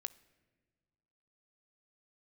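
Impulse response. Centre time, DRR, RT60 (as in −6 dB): 3 ms, 14.0 dB, non-exponential decay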